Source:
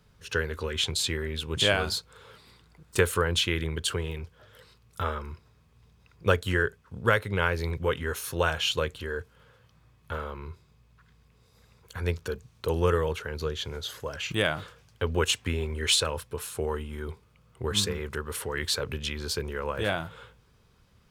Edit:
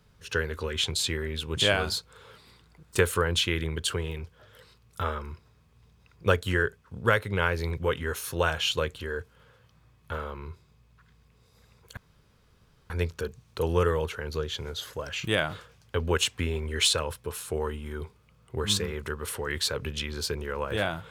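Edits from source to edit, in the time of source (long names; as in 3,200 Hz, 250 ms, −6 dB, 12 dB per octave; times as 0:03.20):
0:11.97: splice in room tone 0.93 s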